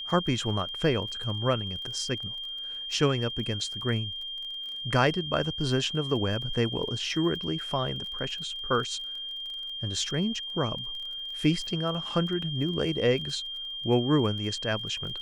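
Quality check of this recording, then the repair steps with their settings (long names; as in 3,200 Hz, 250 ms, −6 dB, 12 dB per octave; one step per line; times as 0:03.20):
surface crackle 22 per second −37 dBFS
whistle 3,200 Hz −34 dBFS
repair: click removal
notch filter 3,200 Hz, Q 30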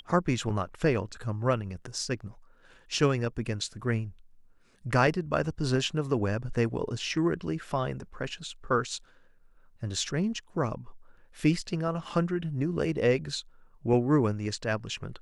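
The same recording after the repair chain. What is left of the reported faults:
none of them is left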